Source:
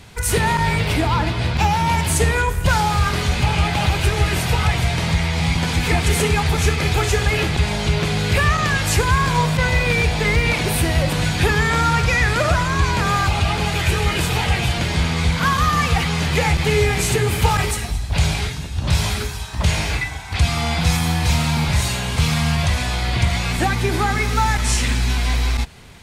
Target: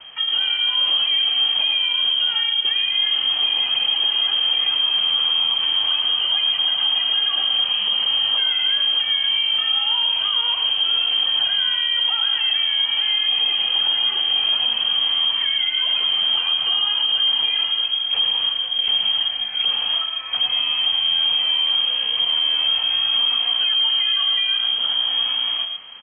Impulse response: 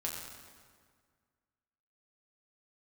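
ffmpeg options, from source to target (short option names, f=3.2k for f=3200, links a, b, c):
-filter_complex "[0:a]bandreject=f=90.87:t=h:w=4,bandreject=f=181.74:t=h:w=4,bandreject=f=272.61:t=h:w=4,bandreject=f=363.48:t=h:w=4,bandreject=f=454.35:t=h:w=4,bandreject=f=545.22:t=h:w=4,bandreject=f=636.09:t=h:w=4,bandreject=f=726.96:t=h:w=4,bandreject=f=817.83:t=h:w=4,bandreject=f=908.7:t=h:w=4,bandreject=f=999.57:t=h:w=4,bandreject=f=1.09044k:t=h:w=4,bandreject=f=1.18131k:t=h:w=4,bandreject=f=1.27218k:t=h:w=4,bandreject=f=1.36305k:t=h:w=4,bandreject=f=1.45392k:t=h:w=4,bandreject=f=1.54479k:t=h:w=4,bandreject=f=1.63566k:t=h:w=4,bandreject=f=1.72653k:t=h:w=4,bandreject=f=1.8174k:t=h:w=4,bandreject=f=1.90827k:t=h:w=4,bandreject=f=1.99914k:t=h:w=4,bandreject=f=2.09001k:t=h:w=4,bandreject=f=2.18088k:t=h:w=4,bandreject=f=2.27175k:t=h:w=4,bandreject=f=2.36262k:t=h:w=4,bandreject=f=2.45349k:t=h:w=4,bandreject=f=2.54436k:t=h:w=4,bandreject=f=2.63523k:t=h:w=4,bandreject=f=2.7261k:t=h:w=4,acrossover=split=250|570[a][b][c];[a]acompressor=threshold=-20dB:ratio=4[d];[b]acompressor=threshold=-32dB:ratio=4[e];[c]acompressor=threshold=-34dB:ratio=4[f];[d][e][f]amix=inputs=3:normalize=0,equalizer=f=110:t=o:w=0.87:g=7.5,asplit=2[g][h];[h]aecho=0:1:111:0.398[i];[g][i]amix=inputs=2:normalize=0,lowpass=f=2.8k:t=q:w=0.5098,lowpass=f=2.8k:t=q:w=0.6013,lowpass=f=2.8k:t=q:w=0.9,lowpass=f=2.8k:t=q:w=2.563,afreqshift=-3300,acrossover=split=790|1400[j][k][l];[l]alimiter=limit=-13dB:level=0:latency=1:release=28[m];[j][k][m]amix=inputs=3:normalize=0"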